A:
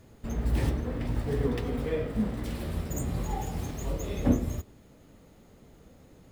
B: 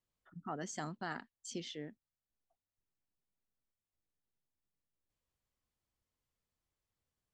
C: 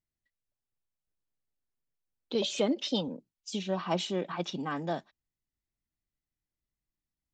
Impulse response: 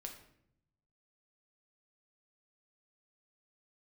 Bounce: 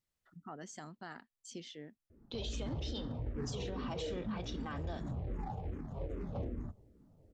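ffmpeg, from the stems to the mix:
-filter_complex "[0:a]adynamicsmooth=sensitivity=3.5:basefreq=650,asplit=2[link_01][link_02];[link_02]afreqshift=-2.5[link_03];[link_01][link_03]amix=inputs=2:normalize=1,adelay=2100,volume=-4dB[link_04];[1:a]volume=-4dB,asplit=2[link_05][link_06];[2:a]equalizer=frequency=5000:width=0.32:gain=5.5,volume=-3dB,asplit=2[link_07][link_08];[link_08]volume=-13.5dB[link_09];[link_06]apad=whole_len=323556[link_10];[link_07][link_10]sidechaincompress=threshold=-59dB:ratio=8:attack=16:release=1100[link_11];[link_05][link_11]amix=inputs=2:normalize=0,alimiter=level_in=10dB:limit=-24dB:level=0:latency=1:release=415,volume=-10dB,volume=0dB[link_12];[3:a]atrim=start_sample=2205[link_13];[link_09][link_13]afir=irnorm=-1:irlink=0[link_14];[link_04][link_12][link_14]amix=inputs=3:normalize=0,alimiter=level_in=7dB:limit=-24dB:level=0:latency=1:release=65,volume=-7dB"

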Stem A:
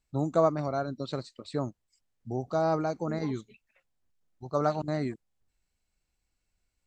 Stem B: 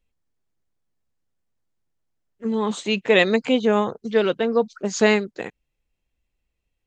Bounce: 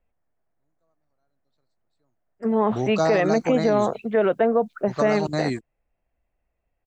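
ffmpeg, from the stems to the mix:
ffmpeg -i stem1.wav -i stem2.wav -filter_complex "[0:a]dynaudnorm=framelen=150:gausssize=11:maxgain=10dB,adelay=450,volume=-4dB[link_01];[1:a]lowpass=frequency=1900:width=0.5412,lowpass=frequency=1900:width=1.3066,equalizer=frequency=670:width_type=o:width=0.57:gain=11.5,volume=0.5dB,asplit=2[link_02][link_03];[link_03]apad=whole_len=322455[link_04];[link_01][link_04]sidechaingate=range=-49dB:threshold=-41dB:ratio=16:detection=peak[link_05];[link_05][link_02]amix=inputs=2:normalize=0,highshelf=frequency=2100:gain=10,acrossover=split=410|3000[link_06][link_07][link_08];[link_07]acompressor=threshold=-18dB:ratio=2[link_09];[link_06][link_09][link_08]amix=inputs=3:normalize=0,alimiter=limit=-11dB:level=0:latency=1:release=28" out.wav

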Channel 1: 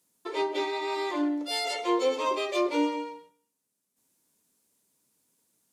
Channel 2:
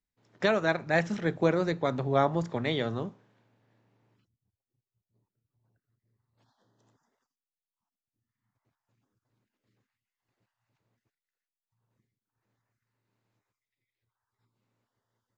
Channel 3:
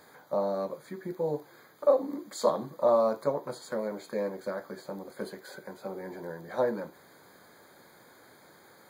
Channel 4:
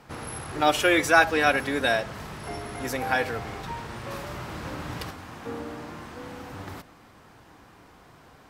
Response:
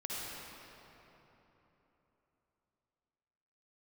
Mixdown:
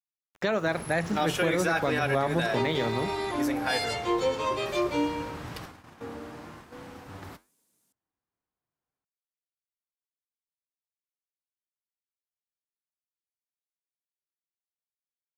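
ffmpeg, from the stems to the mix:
-filter_complex "[0:a]adelay=2200,volume=-1dB[link_01];[1:a]aeval=exprs='val(0)*gte(abs(val(0)),0.00335)':channel_layout=same,volume=2dB[link_02];[3:a]agate=range=-37dB:threshold=-40dB:ratio=16:detection=peak,flanger=delay=5.6:depth=6.7:regen=-79:speed=0.97:shape=sinusoidal,adelay=550,volume=0dB[link_03];[link_01][link_02][link_03]amix=inputs=3:normalize=0,alimiter=limit=-16dB:level=0:latency=1:release=71"

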